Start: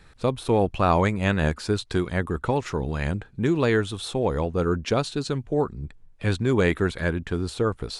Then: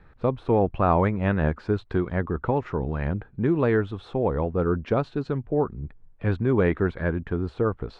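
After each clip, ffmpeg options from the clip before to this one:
ffmpeg -i in.wav -af "lowpass=1600" out.wav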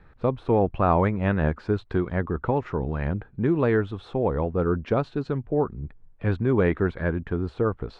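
ffmpeg -i in.wav -af anull out.wav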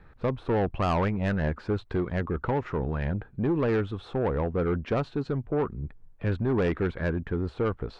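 ffmpeg -i in.wav -af "asoftclip=type=tanh:threshold=-20dB" out.wav

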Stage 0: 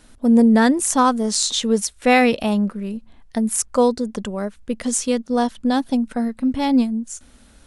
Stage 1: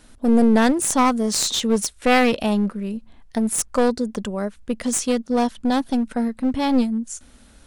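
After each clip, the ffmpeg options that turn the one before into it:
ffmpeg -i in.wav -af "aeval=exprs='clip(val(0),-1,0.106)':channel_layout=same" out.wav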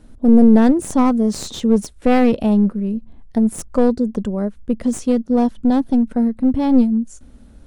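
ffmpeg -i in.wav -af "tiltshelf=frequency=770:gain=8.5,volume=-1dB" out.wav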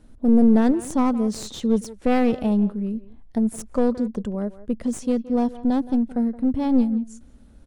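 ffmpeg -i in.wav -filter_complex "[0:a]asplit=2[link_01][link_02];[link_02]adelay=170,highpass=300,lowpass=3400,asoftclip=type=hard:threshold=-11dB,volume=-15dB[link_03];[link_01][link_03]amix=inputs=2:normalize=0,volume=-5.5dB" out.wav

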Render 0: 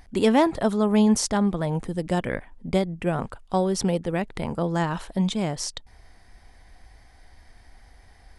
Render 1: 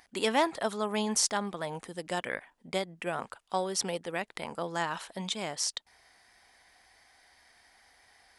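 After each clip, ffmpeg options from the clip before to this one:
ffmpeg -i in.wav -af "highpass=frequency=1200:poles=1" out.wav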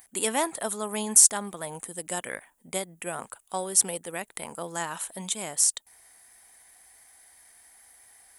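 ffmpeg -i in.wav -af "aexciter=amount=9.9:drive=3.3:freq=7100,volume=-1dB" out.wav

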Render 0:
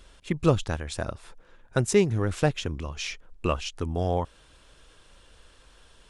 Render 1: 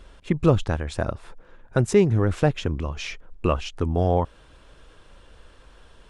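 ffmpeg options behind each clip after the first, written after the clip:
ffmpeg -i in.wav -filter_complex "[0:a]highshelf=frequency=2800:gain=-11,asplit=2[link_01][link_02];[link_02]alimiter=limit=-17dB:level=0:latency=1,volume=0dB[link_03];[link_01][link_03]amix=inputs=2:normalize=0" out.wav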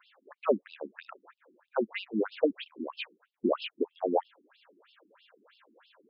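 ffmpeg -i in.wav -af "afftfilt=real='re*between(b*sr/1024,260*pow(3800/260,0.5+0.5*sin(2*PI*3.1*pts/sr))/1.41,260*pow(3800/260,0.5+0.5*sin(2*PI*3.1*pts/sr))*1.41)':imag='im*between(b*sr/1024,260*pow(3800/260,0.5+0.5*sin(2*PI*3.1*pts/sr))/1.41,260*pow(3800/260,0.5+0.5*sin(2*PI*3.1*pts/sr))*1.41)':win_size=1024:overlap=0.75" out.wav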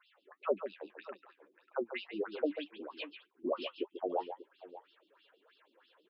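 ffmpeg -i in.wav -filter_complex "[0:a]equalizer=frequency=220:width_type=o:width=0.39:gain=-14.5,flanger=delay=4.4:depth=6.2:regen=46:speed=1.8:shape=triangular,asplit=2[link_01][link_02];[link_02]aecho=0:1:141|590:0.335|0.158[link_03];[link_01][link_03]amix=inputs=2:normalize=0,volume=-1.5dB" out.wav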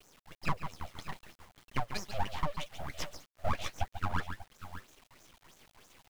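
ffmpeg -i in.wav -af "aeval=exprs='abs(val(0))':channel_layout=same,acrusher=bits=8:dc=4:mix=0:aa=0.000001,alimiter=level_in=2dB:limit=-24dB:level=0:latency=1:release=343,volume=-2dB,volume=7.5dB" out.wav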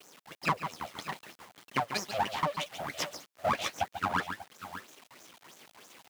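ffmpeg -i in.wav -af "highpass=210,volume=6.5dB" out.wav

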